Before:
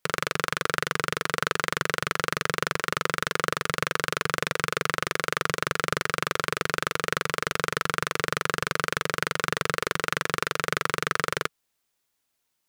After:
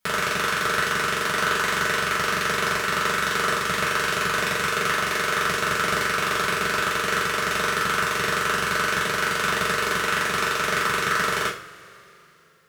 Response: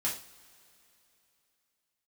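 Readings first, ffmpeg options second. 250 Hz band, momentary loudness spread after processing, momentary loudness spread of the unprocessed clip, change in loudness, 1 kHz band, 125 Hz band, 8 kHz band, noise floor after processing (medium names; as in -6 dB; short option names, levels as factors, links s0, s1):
+3.5 dB, 1 LU, 1 LU, +5.0 dB, +5.0 dB, +0.5 dB, +5.0 dB, -50 dBFS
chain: -filter_complex "[1:a]atrim=start_sample=2205[s0];[0:a][s0]afir=irnorm=-1:irlink=0"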